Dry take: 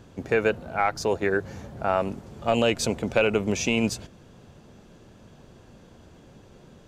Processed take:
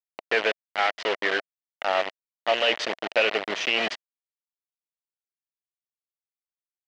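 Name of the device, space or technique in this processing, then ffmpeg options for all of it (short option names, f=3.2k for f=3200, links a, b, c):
hand-held game console: -af "highshelf=f=5k:g=8,bandreject=f=117.7:t=h:w=4,bandreject=f=235.4:t=h:w=4,bandreject=f=353.1:t=h:w=4,bandreject=f=470.8:t=h:w=4,bandreject=f=588.5:t=h:w=4,bandreject=f=706.2:t=h:w=4,acrusher=bits=3:mix=0:aa=0.000001,highpass=420,equalizer=f=650:t=q:w=4:g=5,equalizer=f=1.9k:t=q:w=4:g=8,equalizer=f=3k:t=q:w=4:g=6,lowpass=f=4.5k:w=0.5412,lowpass=f=4.5k:w=1.3066,volume=-2.5dB"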